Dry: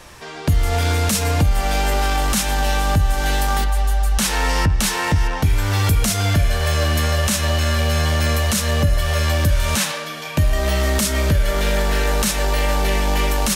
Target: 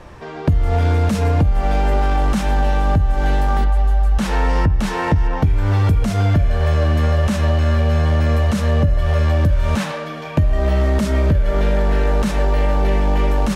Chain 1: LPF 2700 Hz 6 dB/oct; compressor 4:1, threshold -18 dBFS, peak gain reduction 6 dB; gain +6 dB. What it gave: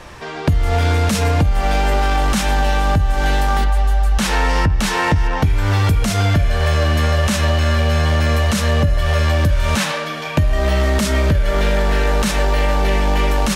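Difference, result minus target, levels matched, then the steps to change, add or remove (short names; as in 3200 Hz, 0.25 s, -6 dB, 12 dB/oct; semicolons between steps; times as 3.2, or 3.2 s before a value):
2000 Hz band +5.5 dB
change: LPF 740 Hz 6 dB/oct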